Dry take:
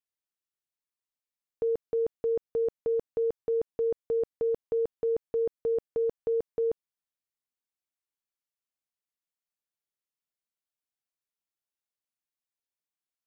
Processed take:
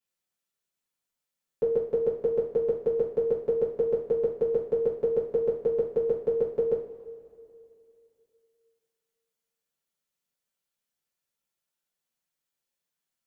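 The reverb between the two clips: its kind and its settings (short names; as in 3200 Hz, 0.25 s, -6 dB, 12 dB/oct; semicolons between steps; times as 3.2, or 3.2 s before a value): two-slope reverb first 0.37 s, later 2.6 s, from -18 dB, DRR -8 dB; gain -2 dB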